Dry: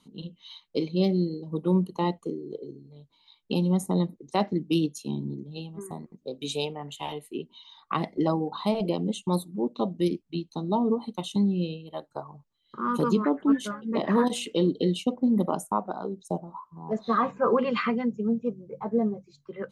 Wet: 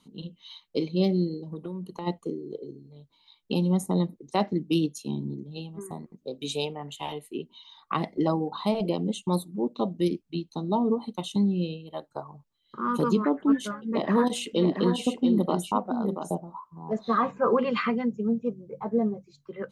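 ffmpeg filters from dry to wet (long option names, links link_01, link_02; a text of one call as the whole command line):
ffmpeg -i in.wav -filter_complex "[0:a]asplit=3[link_01][link_02][link_03];[link_01]afade=type=out:start_time=1.41:duration=0.02[link_04];[link_02]acompressor=threshold=-31dB:ratio=12:attack=3.2:release=140:knee=1:detection=peak,afade=type=in:start_time=1.41:duration=0.02,afade=type=out:start_time=2.06:duration=0.02[link_05];[link_03]afade=type=in:start_time=2.06:duration=0.02[link_06];[link_04][link_05][link_06]amix=inputs=3:normalize=0,asettb=1/sr,asplit=3[link_07][link_08][link_09];[link_07]atrim=end=13.854[link_10];[link_08]atrim=start=13.85:end=16.35,asetpts=PTS-STARTPTS,afade=type=in:duration=0.004:curve=qsin,afade=type=out:start_time=2.496:duration=0.004:curve=qsin,aecho=1:1:682:0.447,atrim=end_sample=110250[link_11];[link_09]atrim=start=16.346[link_12];[link_10][link_11]acrossfade=duration=0.004:curve1=hsin:curve2=qsin[link_13];[link_13][link_12]acrossfade=duration=0.004:curve1=qsin:curve2=hsin" out.wav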